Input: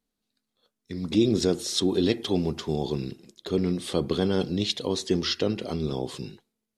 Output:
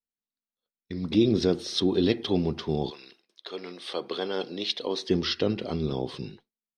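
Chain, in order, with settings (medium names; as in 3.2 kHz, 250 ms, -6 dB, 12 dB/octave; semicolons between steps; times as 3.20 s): 2.89–5.07 s: high-pass 1.1 kHz -> 300 Hz 12 dB/octave; gate with hold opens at -38 dBFS; Savitzky-Golay filter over 15 samples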